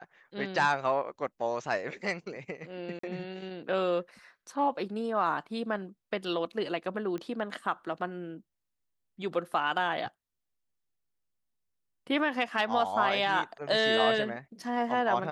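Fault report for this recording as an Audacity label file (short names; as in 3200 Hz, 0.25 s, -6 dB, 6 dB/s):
2.990000	3.030000	gap 44 ms
7.180000	7.180000	pop -26 dBFS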